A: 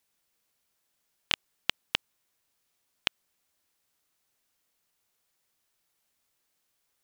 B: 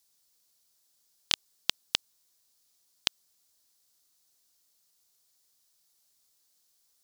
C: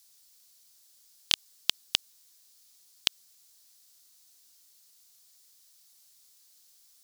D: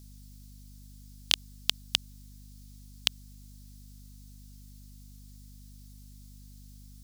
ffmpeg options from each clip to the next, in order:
ffmpeg -i in.wav -af "highshelf=frequency=3400:width_type=q:width=1.5:gain=9,volume=-2.5dB" out.wav
ffmpeg -i in.wav -filter_complex "[0:a]acrossover=split=1700[link_01][link_02];[link_02]acontrast=67[link_03];[link_01][link_03]amix=inputs=2:normalize=0,alimiter=level_in=4dB:limit=-1dB:release=50:level=0:latency=1,volume=-1dB" out.wav
ffmpeg -i in.wav -af "aeval=exprs='val(0)+0.00355*(sin(2*PI*50*n/s)+sin(2*PI*2*50*n/s)/2+sin(2*PI*3*50*n/s)/3+sin(2*PI*4*50*n/s)/4+sin(2*PI*5*50*n/s)/5)':channel_layout=same" out.wav

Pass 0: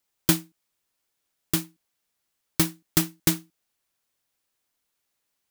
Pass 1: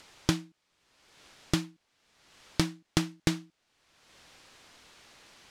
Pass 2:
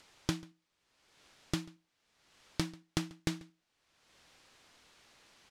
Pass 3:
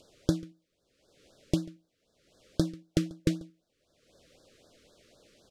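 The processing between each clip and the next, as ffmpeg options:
ffmpeg -i in.wav -filter_complex "[0:a]asplit=2[link_01][link_02];[link_02]acompressor=mode=upward:threshold=-27dB:ratio=2.5,volume=-1dB[link_03];[link_01][link_03]amix=inputs=2:normalize=0,lowpass=5000,acompressor=threshold=-23dB:ratio=6" out.wav
ffmpeg -i in.wav -filter_complex "[0:a]asplit=2[link_01][link_02];[link_02]adelay=139.9,volume=-22dB,highshelf=frequency=4000:gain=-3.15[link_03];[link_01][link_03]amix=inputs=2:normalize=0,volume=-7dB" out.wav
ffmpeg -i in.wav -af "lowshelf=frequency=730:width_type=q:width=3:gain=7,afftfilt=real='re*(1-between(b*sr/1024,750*pow(2500/750,0.5+0.5*sin(2*PI*3.9*pts/sr))/1.41,750*pow(2500/750,0.5+0.5*sin(2*PI*3.9*pts/sr))*1.41))':imag='im*(1-between(b*sr/1024,750*pow(2500/750,0.5+0.5*sin(2*PI*3.9*pts/sr))/1.41,750*pow(2500/750,0.5+0.5*sin(2*PI*3.9*pts/sr))*1.41))':win_size=1024:overlap=0.75" out.wav

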